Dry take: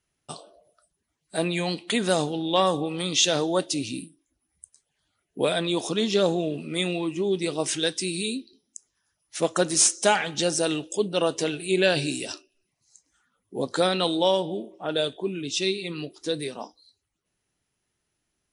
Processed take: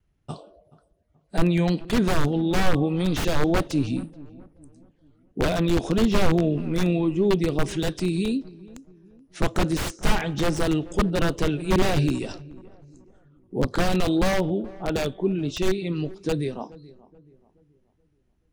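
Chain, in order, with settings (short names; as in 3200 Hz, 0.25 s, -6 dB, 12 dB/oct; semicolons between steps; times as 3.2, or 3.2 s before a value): vibrato 1.7 Hz 32 cents; wrapped overs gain 17 dB; RIAA curve playback; on a send: darkening echo 0.428 s, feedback 42%, low-pass 1200 Hz, level -20 dB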